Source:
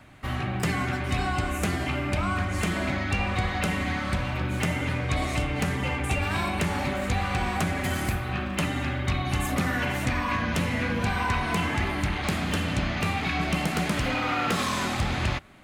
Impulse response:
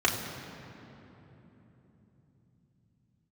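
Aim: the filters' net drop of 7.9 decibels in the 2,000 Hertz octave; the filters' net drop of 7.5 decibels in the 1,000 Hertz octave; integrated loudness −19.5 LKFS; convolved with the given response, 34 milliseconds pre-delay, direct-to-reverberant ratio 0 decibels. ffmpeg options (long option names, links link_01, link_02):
-filter_complex "[0:a]equalizer=frequency=1000:width_type=o:gain=-8.5,equalizer=frequency=2000:width_type=o:gain=-7.5,asplit=2[link_01][link_02];[1:a]atrim=start_sample=2205,adelay=34[link_03];[link_02][link_03]afir=irnorm=-1:irlink=0,volume=-13.5dB[link_04];[link_01][link_04]amix=inputs=2:normalize=0,volume=5.5dB"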